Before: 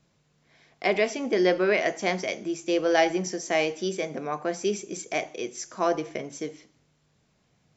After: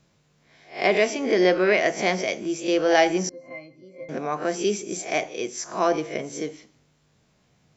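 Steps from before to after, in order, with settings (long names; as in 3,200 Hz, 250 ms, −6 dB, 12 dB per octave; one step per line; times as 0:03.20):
peak hold with a rise ahead of every peak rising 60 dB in 0.33 s
0:03.29–0:04.09: resonances in every octave C, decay 0.23 s
level +2.5 dB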